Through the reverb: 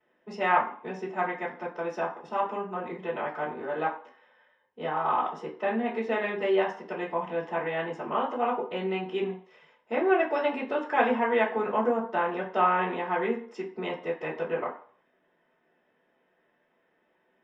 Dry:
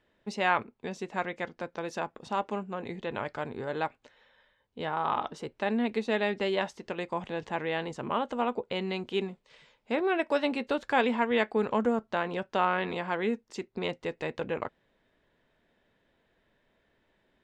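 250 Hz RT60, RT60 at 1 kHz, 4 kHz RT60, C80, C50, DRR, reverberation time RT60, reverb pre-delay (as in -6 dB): 0.35 s, 0.50 s, 0.45 s, 12.5 dB, 8.0 dB, -11.5 dB, 0.50 s, 3 ms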